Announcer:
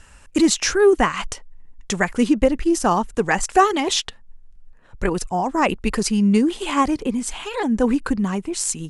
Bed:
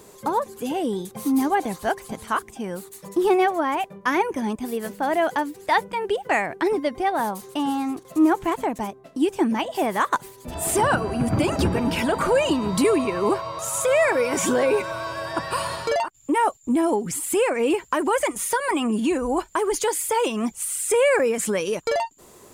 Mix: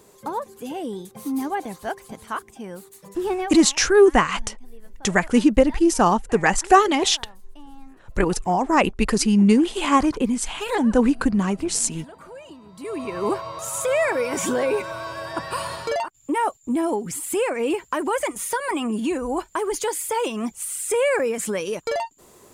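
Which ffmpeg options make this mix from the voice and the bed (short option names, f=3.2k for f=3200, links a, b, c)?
-filter_complex "[0:a]adelay=3150,volume=1dB[a];[1:a]volume=14.5dB,afade=t=out:st=3.24:d=0.51:silence=0.149624,afade=t=in:st=12.79:d=0.46:silence=0.105925[b];[a][b]amix=inputs=2:normalize=0"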